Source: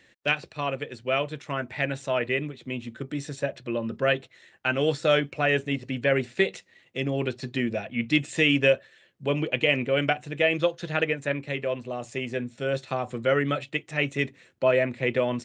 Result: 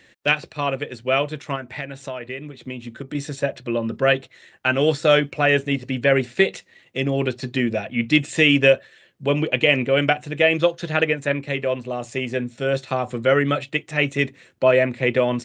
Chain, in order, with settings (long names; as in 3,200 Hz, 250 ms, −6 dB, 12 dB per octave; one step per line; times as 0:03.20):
0:01.55–0:03.15: downward compressor 12 to 1, threshold −32 dBFS, peak gain reduction 12 dB
level +5.5 dB